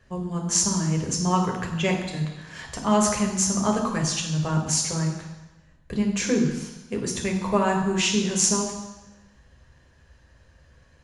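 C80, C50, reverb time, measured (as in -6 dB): 8.0 dB, 5.5 dB, 1.0 s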